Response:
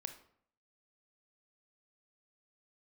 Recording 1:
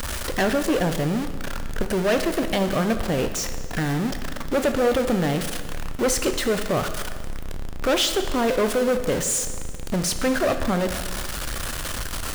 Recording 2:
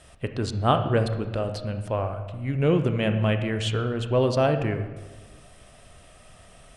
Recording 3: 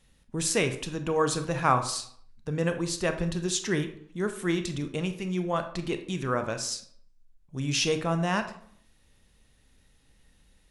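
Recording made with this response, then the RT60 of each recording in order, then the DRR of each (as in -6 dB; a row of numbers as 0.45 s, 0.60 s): 3; 1.7 s, 1.3 s, 0.65 s; 7.5 dB, 7.5 dB, 7.5 dB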